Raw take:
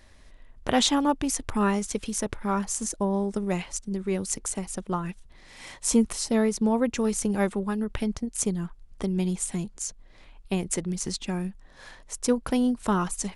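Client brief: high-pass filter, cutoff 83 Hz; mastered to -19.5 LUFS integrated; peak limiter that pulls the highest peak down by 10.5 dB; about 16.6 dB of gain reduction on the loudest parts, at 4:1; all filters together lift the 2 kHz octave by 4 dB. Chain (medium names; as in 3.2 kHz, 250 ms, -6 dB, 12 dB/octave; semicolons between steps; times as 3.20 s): high-pass 83 Hz; peaking EQ 2 kHz +5 dB; compression 4:1, threshold -37 dBFS; trim +20.5 dB; peak limiter -7.5 dBFS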